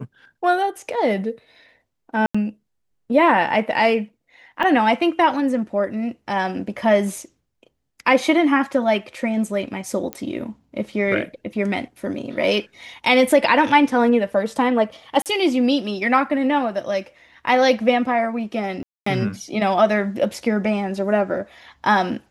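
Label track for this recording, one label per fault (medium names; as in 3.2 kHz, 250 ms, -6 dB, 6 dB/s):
2.260000	2.350000	dropout 85 ms
4.630000	4.640000	dropout 5.1 ms
10.130000	10.130000	pop -12 dBFS
15.220000	15.260000	dropout 38 ms
18.830000	19.060000	dropout 234 ms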